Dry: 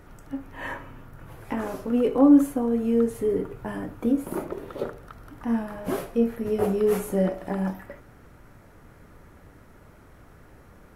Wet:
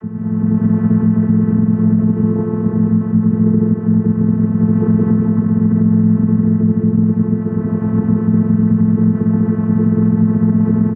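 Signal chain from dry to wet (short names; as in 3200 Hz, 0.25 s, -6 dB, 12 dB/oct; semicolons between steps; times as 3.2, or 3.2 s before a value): per-bin compression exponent 0.2; EQ curve 150 Hz 0 dB, 230 Hz -5 dB, 580 Hz -25 dB, 1400 Hz -12 dB, 3800 Hz -27 dB; digital reverb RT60 2.5 s, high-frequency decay 0.6×, pre-delay 95 ms, DRR -6 dB; vocoder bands 32, saw 218 Hz; on a send: analogue delay 0.313 s, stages 2048, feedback 54%, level -24 dB; on the sum: harmoniser -12 st -7 dB, -4 st -4 dB; AGC; limiter -8 dBFS, peak gain reduction 7 dB; gain +3.5 dB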